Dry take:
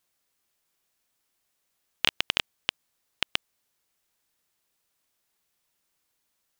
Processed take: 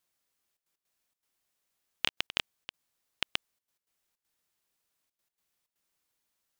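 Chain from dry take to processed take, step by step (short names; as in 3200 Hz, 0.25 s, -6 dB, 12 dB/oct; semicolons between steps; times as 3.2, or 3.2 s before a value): step gate "xxxxxx.x.xxx.xxx" 159 bpm -12 dB; gain -4.5 dB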